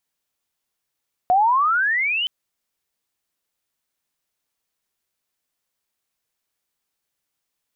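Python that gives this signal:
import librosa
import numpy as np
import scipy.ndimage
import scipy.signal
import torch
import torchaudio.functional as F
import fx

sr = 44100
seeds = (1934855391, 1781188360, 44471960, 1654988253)

y = fx.chirp(sr, length_s=0.97, from_hz=710.0, to_hz=3100.0, law='logarithmic', from_db=-12.5, to_db=-20.0)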